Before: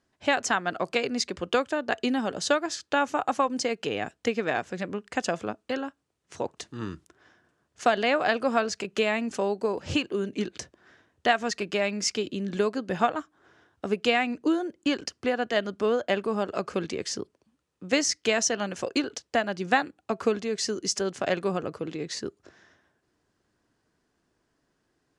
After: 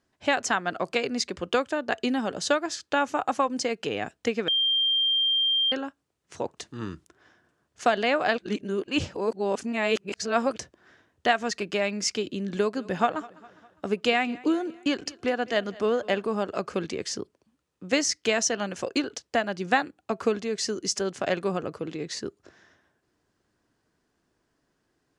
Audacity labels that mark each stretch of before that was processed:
4.480000	5.720000	bleep 3180 Hz -20.5 dBFS
8.380000	10.560000	reverse
12.530000	16.290000	feedback echo 0.203 s, feedback 51%, level -21.5 dB

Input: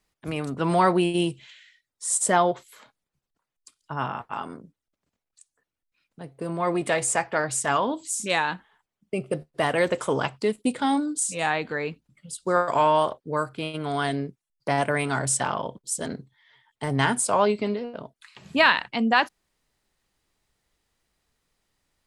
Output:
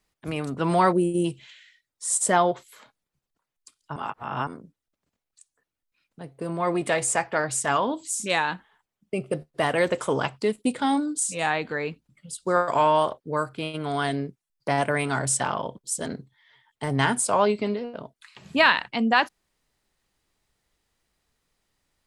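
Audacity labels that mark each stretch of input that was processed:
0.920000	1.250000	spectral gain 650–5600 Hz -17 dB
3.960000	4.470000	reverse

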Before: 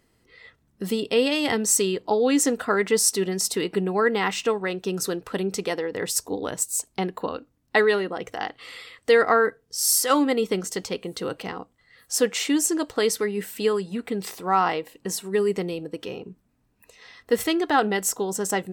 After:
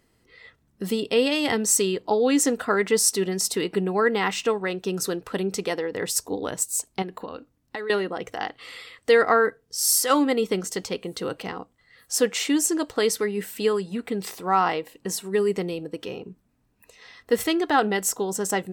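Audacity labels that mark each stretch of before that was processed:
7.020000	7.900000	compressor, threshold -30 dBFS

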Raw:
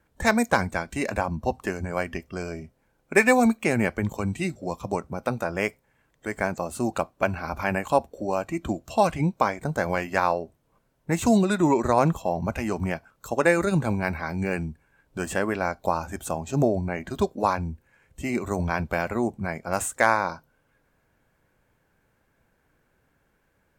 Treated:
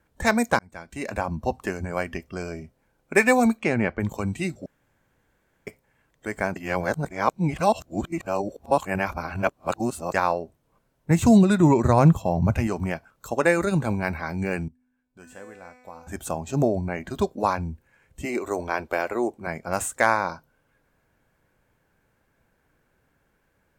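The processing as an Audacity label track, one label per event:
0.590000	1.310000	fade in
3.590000	3.990000	LPF 6200 Hz -> 2400 Hz
4.660000	5.670000	room tone
6.560000	10.140000	reverse
11.100000	12.670000	bell 110 Hz +12.5 dB 1.6 oct
14.680000	16.070000	resonator 250 Hz, decay 1.3 s, mix 90%
18.250000	19.470000	resonant low shelf 240 Hz -11.5 dB, Q 1.5

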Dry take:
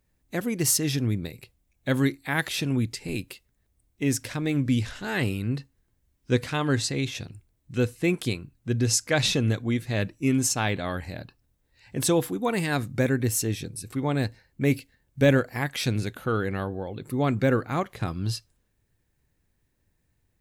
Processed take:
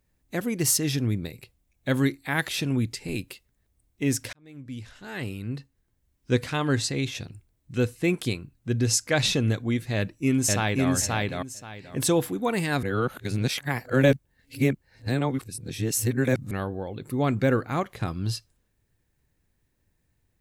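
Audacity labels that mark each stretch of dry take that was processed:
4.330000	6.310000	fade in
9.950000	10.890000	echo throw 0.53 s, feedback 20%, level -1 dB
12.830000	16.510000	reverse

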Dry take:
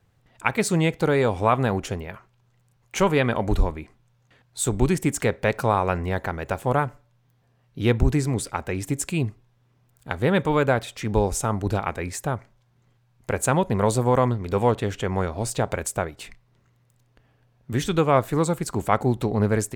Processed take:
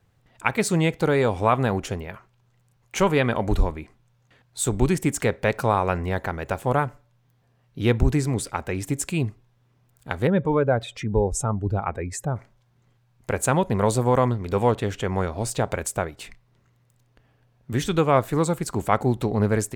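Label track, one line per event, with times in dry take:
10.270000	12.360000	spectral contrast raised exponent 1.6

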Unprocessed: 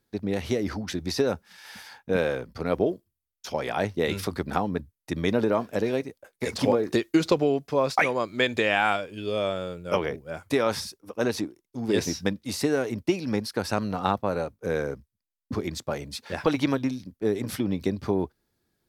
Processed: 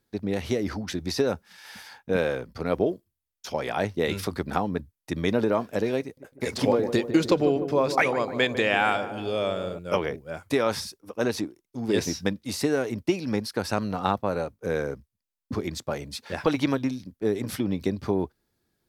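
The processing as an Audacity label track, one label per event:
6.020000	9.790000	darkening echo 0.151 s, feedback 73%, low-pass 990 Hz, level -9.5 dB

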